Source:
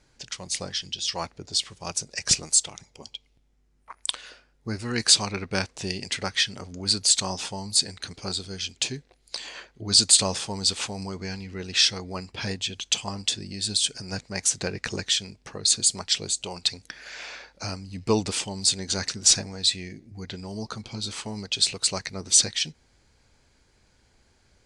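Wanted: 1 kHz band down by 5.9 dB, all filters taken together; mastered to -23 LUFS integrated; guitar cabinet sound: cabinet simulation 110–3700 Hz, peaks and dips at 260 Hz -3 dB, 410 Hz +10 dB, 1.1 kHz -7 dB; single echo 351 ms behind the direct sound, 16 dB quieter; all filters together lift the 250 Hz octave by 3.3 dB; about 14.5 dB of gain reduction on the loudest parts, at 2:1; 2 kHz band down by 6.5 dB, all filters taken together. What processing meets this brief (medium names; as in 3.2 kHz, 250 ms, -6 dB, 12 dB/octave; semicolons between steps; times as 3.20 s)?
peaking EQ 250 Hz +5 dB; peaking EQ 1 kHz -4 dB; peaking EQ 2 kHz -7 dB; compression 2:1, threshold -41 dBFS; cabinet simulation 110–3700 Hz, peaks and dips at 260 Hz -3 dB, 410 Hz +10 dB, 1.1 kHz -7 dB; delay 351 ms -16 dB; trim +17.5 dB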